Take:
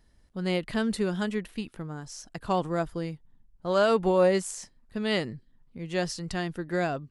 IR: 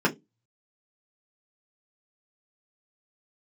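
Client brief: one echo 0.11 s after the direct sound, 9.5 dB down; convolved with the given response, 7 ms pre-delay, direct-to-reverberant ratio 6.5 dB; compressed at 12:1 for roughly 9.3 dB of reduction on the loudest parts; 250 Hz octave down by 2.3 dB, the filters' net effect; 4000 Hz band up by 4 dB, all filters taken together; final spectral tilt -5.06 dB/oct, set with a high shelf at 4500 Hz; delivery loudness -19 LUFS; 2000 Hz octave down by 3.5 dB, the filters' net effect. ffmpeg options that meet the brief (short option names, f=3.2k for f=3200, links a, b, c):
-filter_complex "[0:a]equalizer=f=250:t=o:g=-3.5,equalizer=f=2k:t=o:g=-6.5,equalizer=f=4k:t=o:g=6,highshelf=f=4.5k:g=3,acompressor=threshold=-28dB:ratio=12,aecho=1:1:110:0.335,asplit=2[a][b];[1:a]atrim=start_sample=2205,adelay=7[c];[b][c]afir=irnorm=-1:irlink=0,volume=-21dB[d];[a][d]amix=inputs=2:normalize=0,volume=13dB"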